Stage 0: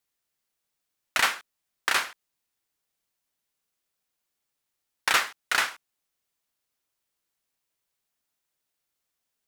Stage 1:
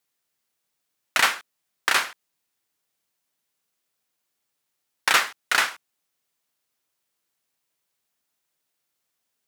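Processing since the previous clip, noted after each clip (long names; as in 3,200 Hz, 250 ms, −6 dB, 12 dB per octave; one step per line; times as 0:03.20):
high-pass filter 96 Hz
level +3.5 dB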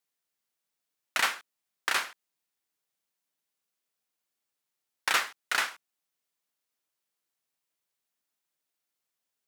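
low-shelf EQ 66 Hz −11.5 dB
level −7 dB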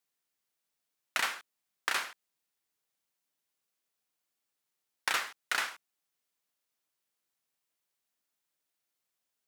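downward compressor 4 to 1, threshold −27 dBFS, peak gain reduction 6 dB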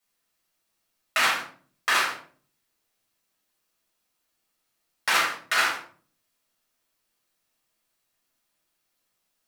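convolution reverb RT60 0.45 s, pre-delay 5 ms, DRR −6.5 dB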